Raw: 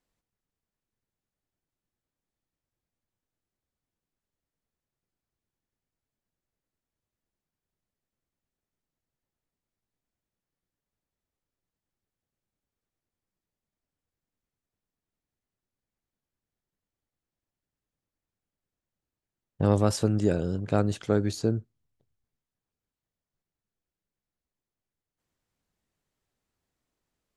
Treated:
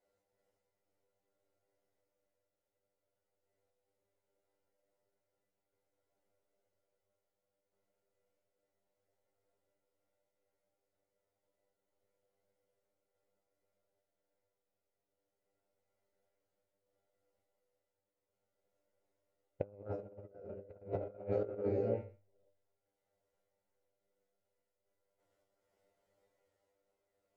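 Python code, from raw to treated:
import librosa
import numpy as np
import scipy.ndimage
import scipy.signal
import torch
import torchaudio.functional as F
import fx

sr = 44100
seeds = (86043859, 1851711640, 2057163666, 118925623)

y = fx.rattle_buzz(x, sr, strikes_db=-23.0, level_db=-30.0)
y = fx.band_shelf(y, sr, hz=550.0, db=10.0, octaves=1.7)
y = fx.env_lowpass_down(y, sr, base_hz=1200.0, full_db=-22.0)
y = fx.small_body(y, sr, hz=(550.0, 1400.0, 2000.0), ring_ms=30, db=12)
y = fx.tremolo_random(y, sr, seeds[0], hz=3.5, depth_pct=65)
y = fx.comb_fb(y, sr, f0_hz=99.0, decay_s=0.3, harmonics='all', damping=0.0, mix_pct=100)
y = y + 10.0 ** (-22.5 / 20.0) * np.pad(y, (int(143 * sr / 1000.0), 0))[:len(y)]
y = fx.rev_gated(y, sr, seeds[1], gate_ms=490, shape='rising', drr_db=0.0)
y = fx.over_compress(y, sr, threshold_db=-37.0, ratio=-0.5)
y = y * 10.0 ** (-3.0 / 20.0)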